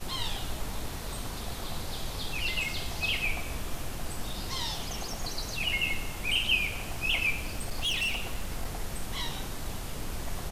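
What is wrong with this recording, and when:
7.39–8.67 clipped -26 dBFS

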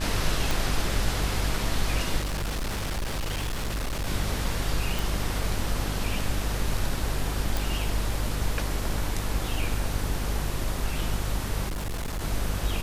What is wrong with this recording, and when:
buzz 50 Hz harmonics 35 -31 dBFS
0.51 pop
2.19–4.07 clipped -26 dBFS
4.99 pop
7.57 pop
11.68–12.22 clipped -27.5 dBFS

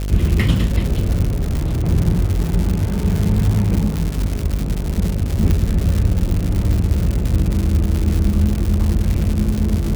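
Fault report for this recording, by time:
buzz 50 Hz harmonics 14 -22 dBFS
crackle 220/s -19 dBFS
1.27–1.9 clipped -15.5 dBFS
5.51 pop -6 dBFS

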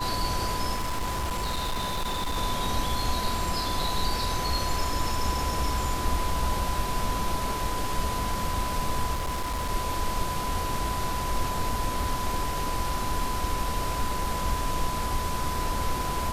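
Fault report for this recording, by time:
tone 1000 Hz -31 dBFS
0.74–2.37 clipped -25 dBFS
9.13–9.7 clipped -25.5 dBFS

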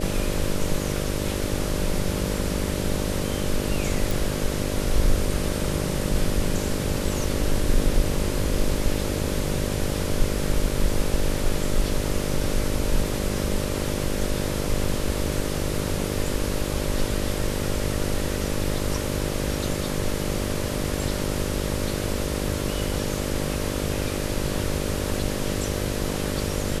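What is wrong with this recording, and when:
buzz 50 Hz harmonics 12 -29 dBFS
4.11 pop

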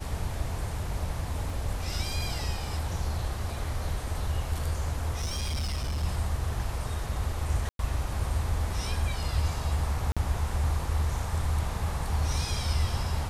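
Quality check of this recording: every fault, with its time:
1.5 gap 3.1 ms
5.19–6.04 clipped -27 dBFS
7.69–7.79 gap 0.102 s
10.12–10.17 gap 46 ms

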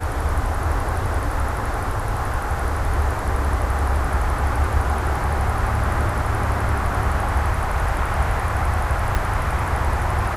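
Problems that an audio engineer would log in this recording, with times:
9.15 pop -9 dBFS

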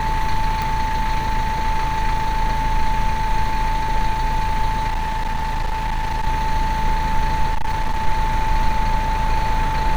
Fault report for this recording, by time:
tone 880 Hz -22 dBFS
0.62 pop
4.87–6.27 clipped -18 dBFS
7.48–8.07 clipped -15.5 dBFS

